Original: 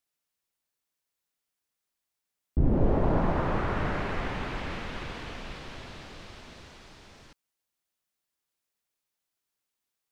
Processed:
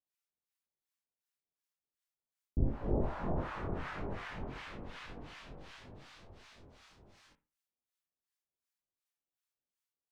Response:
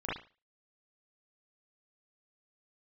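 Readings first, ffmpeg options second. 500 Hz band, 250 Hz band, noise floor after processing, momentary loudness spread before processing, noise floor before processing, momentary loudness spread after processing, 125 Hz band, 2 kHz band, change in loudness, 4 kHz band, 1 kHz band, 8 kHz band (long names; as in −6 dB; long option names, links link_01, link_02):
−10.0 dB, −10.0 dB, below −85 dBFS, 21 LU, below −85 dBFS, 21 LU, −9.0 dB, −10.0 dB, −9.5 dB, −10.5 dB, −11.0 dB, can't be measured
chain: -filter_complex "[0:a]acrossover=split=870[link_01][link_02];[link_01]aeval=exprs='val(0)*(1-1/2+1/2*cos(2*PI*2.7*n/s))':channel_layout=same[link_03];[link_02]aeval=exprs='val(0)*(1-1/2-1/2*cos(2*PI*2.7*n/s))':channel_layout=same[link_04];[link_03][link_04]amix=inputs=2:normalize=0,flanger=delay=20:depth=3:speed=1.7,asplit=2[link_05][link_06];[1:a]atrim=start_sample=2205,lowpass=1900[link_07];[link_06][link_07]afir=irnorm=-1:irlink=0,volume=-16.5dB[link_08];[link_05][link_08]amix=inputs=2:normalize=0,volume=-3dB"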